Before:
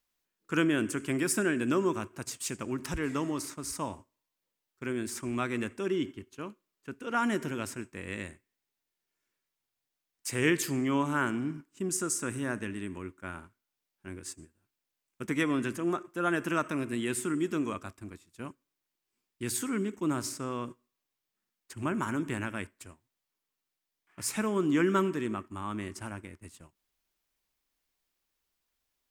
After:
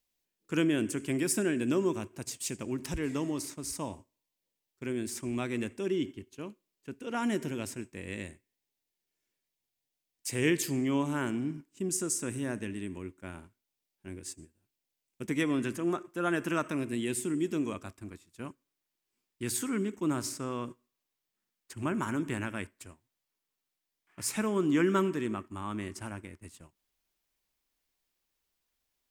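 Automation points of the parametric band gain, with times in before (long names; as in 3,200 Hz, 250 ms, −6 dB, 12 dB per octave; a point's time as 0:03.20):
parametric band 1,300 Hz 0.88 octaves
0:15.30 −9 dB
0:15.78 −3 dB
0:16.69 −3 dB
0:17.24 −13.5 dB
0:18.04 −2 dB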